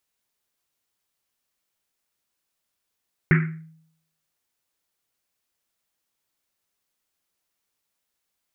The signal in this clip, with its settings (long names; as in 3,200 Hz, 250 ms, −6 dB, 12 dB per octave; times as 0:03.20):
drum after Risset, pitch 160 Hz, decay 0.70 s, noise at 1,800 Hz, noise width 880 Hz, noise 30%